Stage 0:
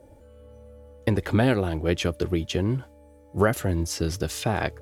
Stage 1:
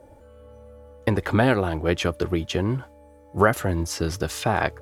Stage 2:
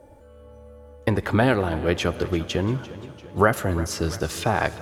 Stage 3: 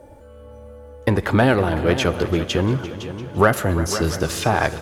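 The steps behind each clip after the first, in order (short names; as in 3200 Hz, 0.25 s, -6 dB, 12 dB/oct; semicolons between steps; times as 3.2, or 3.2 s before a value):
bell 1100 Hz +7 dB 1.6 oct
Schroeder reverb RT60 3.1 s, combs from 28 ms, DRR 16.5 dB; warbling echo 0.344 s, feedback 58%, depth 78 cents, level -17 dB
in parallel at -5 dB: soft clip -18.5 dBFS, distortion -9 dB; on the sum: echo 0.508 s -12 dB; gain +1 dB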